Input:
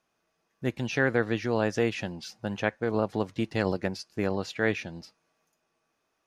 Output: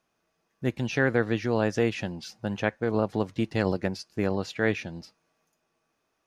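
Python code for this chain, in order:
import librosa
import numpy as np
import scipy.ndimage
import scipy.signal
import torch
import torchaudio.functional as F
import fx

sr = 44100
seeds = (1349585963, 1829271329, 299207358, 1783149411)

y = fx.low_shelf(x, sr, hz=350.0, db=3.0)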